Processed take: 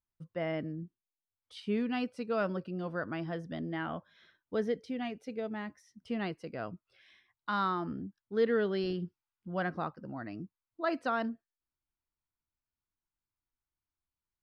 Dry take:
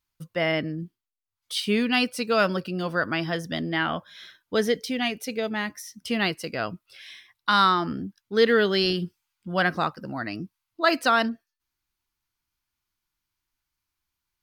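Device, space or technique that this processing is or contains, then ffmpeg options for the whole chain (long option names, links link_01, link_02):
through cloth: -af "lowpass=8300,highshelf=frequency=2100:gain=-17,volume=-7.5dB"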